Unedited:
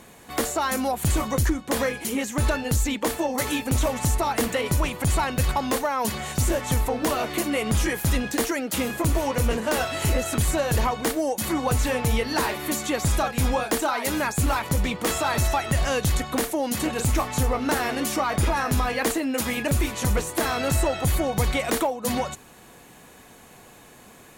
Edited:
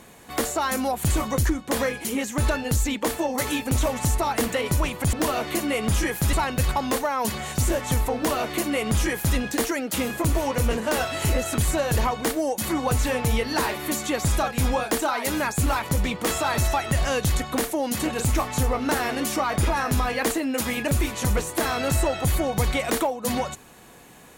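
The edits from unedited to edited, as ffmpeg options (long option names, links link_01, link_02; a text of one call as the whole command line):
ffmpeg -i in.wav -filter_complex "[0:a]asplit=3[link_01][link_02][link_03];[link_01]atrim=end=5.132[link_04];[link_02]atrim=start=6.958:end=8.162[link_05];[link_03]atrim=start=5.128[link_06];[link_04][link_05]acrossfade=duration=0.004:curve1=hsin:curve2=hsin[link_07];[link_07][link_06]acrossfade=duration=0.004:curve1=hsin:curve2=hsin" out.wav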